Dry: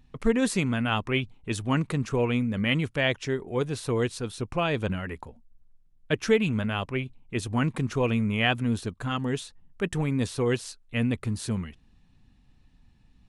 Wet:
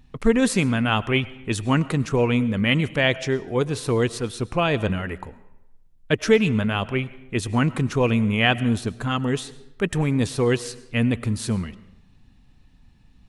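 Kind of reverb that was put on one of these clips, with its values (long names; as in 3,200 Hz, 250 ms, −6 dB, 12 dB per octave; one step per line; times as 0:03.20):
comb and all-pass reverb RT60 0.89 s, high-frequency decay 0.75×, pre-delay 65 ms, DRR 17.5 dB
level +5 dB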